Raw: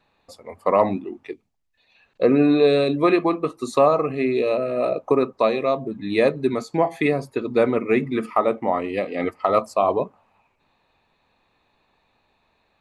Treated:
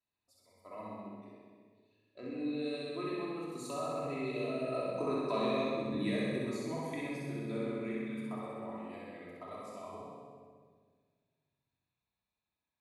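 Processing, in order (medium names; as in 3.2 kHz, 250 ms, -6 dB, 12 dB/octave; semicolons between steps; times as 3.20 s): Doppler pass-by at 5.39 s, 7 m/s, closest 2.6 m; high-pass 45 Hz; bass shelf 270 Hz +6.5 dB; compression 2:1, threshold -29 dBFS, peak gain reduction 9 dB; pre-emphasis filter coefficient 0.8; flutter echo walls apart 11 m, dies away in 1.3 s; simulated room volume 1700 m³, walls mixed, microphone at 2.9 m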